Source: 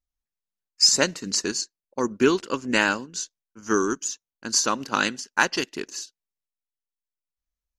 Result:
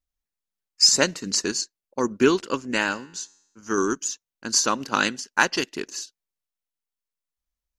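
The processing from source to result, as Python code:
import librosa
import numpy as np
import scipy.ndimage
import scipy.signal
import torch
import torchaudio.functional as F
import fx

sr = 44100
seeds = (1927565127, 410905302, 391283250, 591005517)

y = fx.comb_fb(x, sr, f0_hz=94.0, decay_s=0.83, harmonics='all', damping=0.0, mix_pct=40, at=(2.62, 3.78))
y = y * 10.0 ** (1.0 / 20.0)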